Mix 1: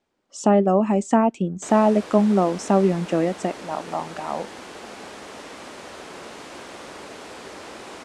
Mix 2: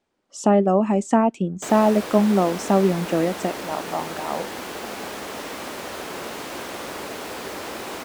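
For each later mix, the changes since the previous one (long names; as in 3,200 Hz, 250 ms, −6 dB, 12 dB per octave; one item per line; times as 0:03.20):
background +6.0 dB
master: remove low-pass filter 9,700 Hz 24 dB per octave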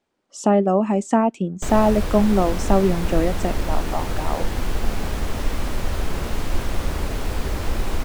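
background: remove high-pass filter 320 Hz 12 dB per octave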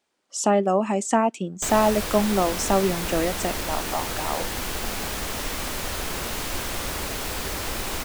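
master: add spectral tilt +2.5 dB per octave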